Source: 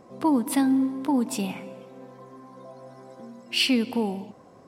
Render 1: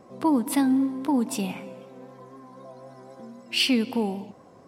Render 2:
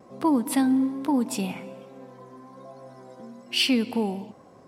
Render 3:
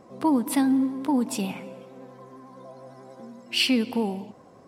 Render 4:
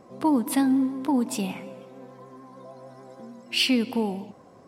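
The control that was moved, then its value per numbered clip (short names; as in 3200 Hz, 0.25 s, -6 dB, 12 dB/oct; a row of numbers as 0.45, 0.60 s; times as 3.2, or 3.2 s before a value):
vibrato, rate: 3.9, 1.2, 11, 6.7 Hz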